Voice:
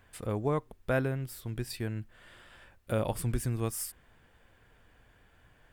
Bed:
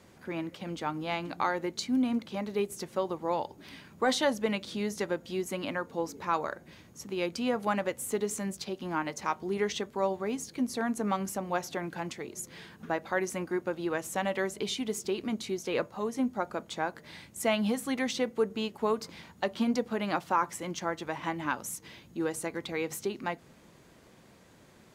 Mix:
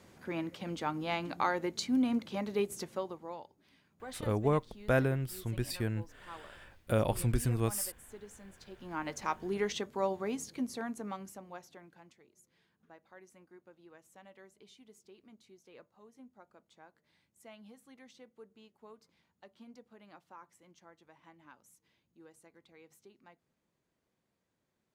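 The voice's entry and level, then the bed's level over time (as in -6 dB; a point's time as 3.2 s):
4.00 s, +1.0 dB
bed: 2.79 s -1.5 dB
3.57 s -19 dB
8.55 s -19 dB
9.1 s -3 dB
10.45 s -3 dB
12.32 s -25.5 dB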